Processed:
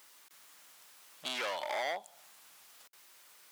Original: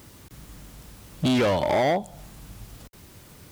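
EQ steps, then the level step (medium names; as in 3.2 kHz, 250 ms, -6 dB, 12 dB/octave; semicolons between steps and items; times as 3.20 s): high-pass 1 kHz 12 dB/octave; -6.5 dB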